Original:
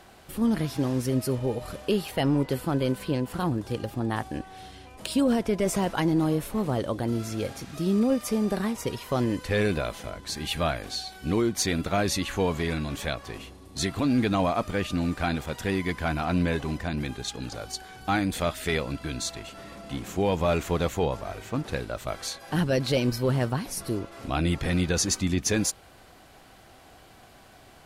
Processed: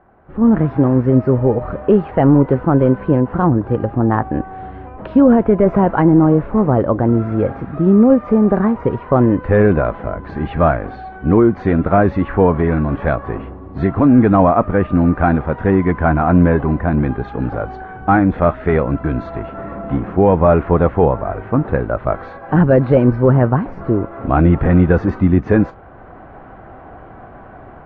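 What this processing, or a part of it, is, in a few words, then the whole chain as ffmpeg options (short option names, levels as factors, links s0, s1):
action camera in a waterproof case: -af "lowpass=f=1500:w=0.5412,lowpass=f=1500:w=1.3066,dynaudnorm=f=240:g=3:m=6.31" -ar 24000 -c:a aac -b:a 48k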